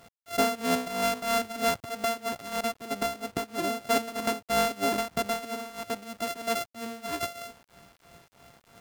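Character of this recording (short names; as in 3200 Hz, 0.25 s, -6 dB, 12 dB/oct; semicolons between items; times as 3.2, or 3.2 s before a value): a buzz of ramps at a fixed pitch in blocks of 64 samples; tremolo triangle 3.1 Hz, depth 85%; a quantiser's noise floor 10-bit, dither none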